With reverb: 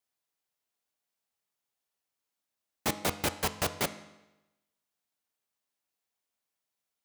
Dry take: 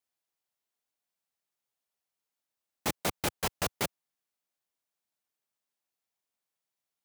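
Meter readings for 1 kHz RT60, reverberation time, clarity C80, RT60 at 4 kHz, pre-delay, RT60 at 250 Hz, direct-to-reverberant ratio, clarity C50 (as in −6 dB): 1.0 s, 1.0 s, 15.5 dB, 0.90 s, 4 ms, 1.0 s, 10.0 dB, 13.5 dB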